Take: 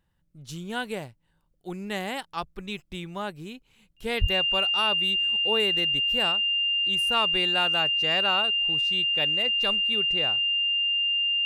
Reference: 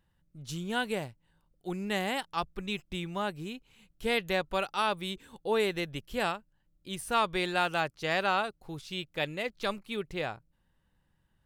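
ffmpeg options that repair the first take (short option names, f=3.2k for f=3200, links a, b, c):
-filter_complex "[0:a]bandreject=f=2.8k:w=30,asplit=3[a][b][c];[a]afade=t=out:st=4.2:d=0.02[d];[b]highpass=f=140:w=0.5412,highpass=f=140:w=1.3066,afade=t=in:st=4.2:d=0.02,afade=t=out:st=4.32:d=0.02[e];[c]afade=t=in:st=4.32:d=0.02[f];[d][e][f]amix=inputs=3:normalize=0"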